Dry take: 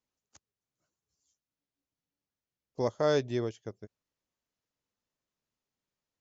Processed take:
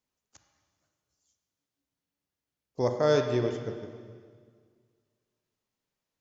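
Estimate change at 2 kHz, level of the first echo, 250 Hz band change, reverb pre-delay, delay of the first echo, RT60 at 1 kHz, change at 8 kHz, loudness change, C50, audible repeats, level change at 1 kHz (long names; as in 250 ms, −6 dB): +3.0 dB, no echo audible, +3.5 dB, 23 ms, no echo audible, 1.8 s, can't be measured, +3.0 dB, 5.5 dB, no echo audible, +3.0 dB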